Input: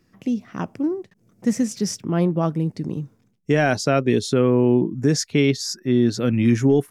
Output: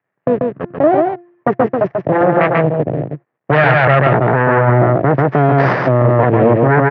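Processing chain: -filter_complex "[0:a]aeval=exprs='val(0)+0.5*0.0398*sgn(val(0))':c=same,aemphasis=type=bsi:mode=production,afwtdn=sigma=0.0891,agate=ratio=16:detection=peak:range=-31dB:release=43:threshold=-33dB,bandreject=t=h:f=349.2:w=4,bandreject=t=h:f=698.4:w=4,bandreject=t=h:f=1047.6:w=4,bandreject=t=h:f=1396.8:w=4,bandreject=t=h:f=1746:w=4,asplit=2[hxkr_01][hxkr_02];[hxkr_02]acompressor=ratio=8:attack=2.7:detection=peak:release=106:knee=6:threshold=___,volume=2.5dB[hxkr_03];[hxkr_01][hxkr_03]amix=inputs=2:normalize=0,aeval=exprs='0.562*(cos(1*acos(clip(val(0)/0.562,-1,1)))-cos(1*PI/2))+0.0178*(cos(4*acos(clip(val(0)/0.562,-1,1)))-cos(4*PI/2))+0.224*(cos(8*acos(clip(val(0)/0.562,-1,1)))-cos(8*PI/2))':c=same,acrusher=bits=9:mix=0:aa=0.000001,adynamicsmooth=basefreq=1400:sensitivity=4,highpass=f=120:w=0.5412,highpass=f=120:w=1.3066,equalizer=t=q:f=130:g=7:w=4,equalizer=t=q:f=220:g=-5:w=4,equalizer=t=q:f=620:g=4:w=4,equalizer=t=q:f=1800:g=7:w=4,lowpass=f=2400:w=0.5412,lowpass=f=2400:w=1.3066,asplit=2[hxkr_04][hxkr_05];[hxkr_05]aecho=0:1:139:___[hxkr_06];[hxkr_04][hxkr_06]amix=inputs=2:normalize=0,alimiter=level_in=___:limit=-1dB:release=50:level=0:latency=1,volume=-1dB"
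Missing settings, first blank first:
-32dB, 0.631, 6.5dB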